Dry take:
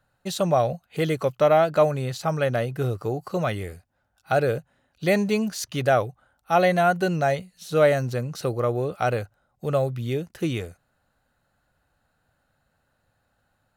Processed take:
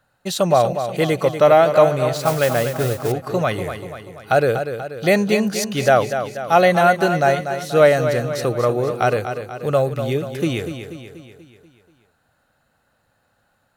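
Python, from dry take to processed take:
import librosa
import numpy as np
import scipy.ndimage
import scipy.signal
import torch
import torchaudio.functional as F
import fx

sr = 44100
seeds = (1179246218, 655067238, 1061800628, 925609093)

p1 = fx.low_shelf(x, sr, hz=120.0, db=-8.0)
p2 = p1 + fx.echo_feedback(p1, sr, ms=242, feedback_pct=53, wet_db=-9.0, dry=0)
p3 = fx.mod_noise(p2, sr, seeds[0], snr_db=14, at=(2.14, 3.12))
y = p3 * librosa.db_to_amplitude(6.0)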